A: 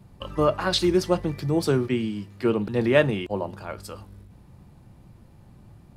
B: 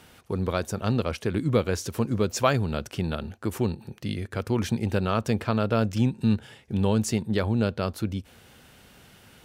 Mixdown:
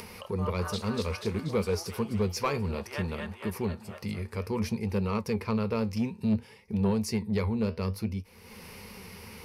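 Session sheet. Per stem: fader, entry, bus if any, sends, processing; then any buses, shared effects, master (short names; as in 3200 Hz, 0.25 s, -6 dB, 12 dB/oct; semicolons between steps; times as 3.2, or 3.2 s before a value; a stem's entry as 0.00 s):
-8.0 dB, 0.00 s, no send, echo send -13 dB, high shelf 5300 Hz +8 dB; LFO high-pass saw up 0.84 Hz 510–1900 Hz; auto duck -10 dB, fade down 0.20 s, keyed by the second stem
-1.5 dB, 0.00 s, no send, no echo send, ripple EQ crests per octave 0.86, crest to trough 12 dB; flange 0.59 Hz, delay 4 ms, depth 9.9 ms, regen +70%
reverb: off
echo: feedback echo 0.241 s, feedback 58%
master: upward compressor, threshold -34 dBFS; soft clip -19 dBFS, distortion -18 dB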